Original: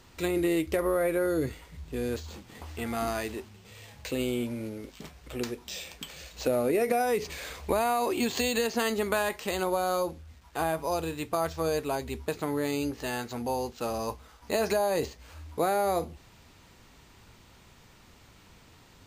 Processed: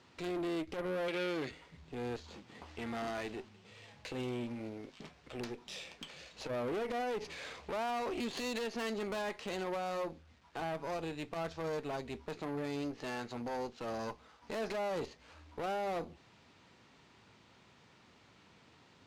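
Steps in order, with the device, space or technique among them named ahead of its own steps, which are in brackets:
valve radio (band-pass filter 130–5,000 Hz; tube saturation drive 31 dB, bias 0.6; saturating transformer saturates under 160 Hz)
0:01.08–0:01.51: meter weighting curve D
level −2 dB

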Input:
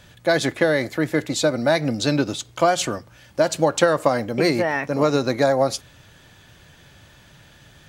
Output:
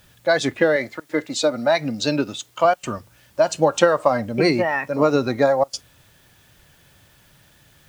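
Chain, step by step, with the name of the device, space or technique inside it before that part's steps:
worn cassette (low-pass filter 6,900 Hz 12 dB per octave; tape wow and flutter 22 cents; tape dropouts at 0:01.00/0:02.74/0:05.64, 91 ms −26 dB; white noise bed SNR 31 dB)
noise reduction from a noise print of the clip's start 8 dB
0:00.76–0:02.65: high-pass filter 260 Hz 6 dB per octave
level +2 dB

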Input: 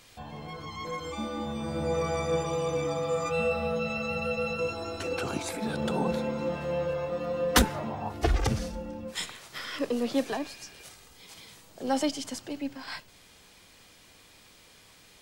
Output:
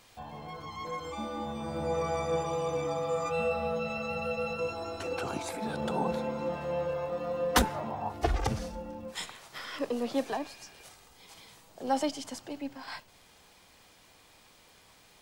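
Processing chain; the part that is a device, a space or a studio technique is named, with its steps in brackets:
parametric band 830 Hz +6 dB 1.1 octaves
vinyl LP (surface crackle 98 per second −47 dBFS; pink noise bed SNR 40 dB)
level −4.5 dB

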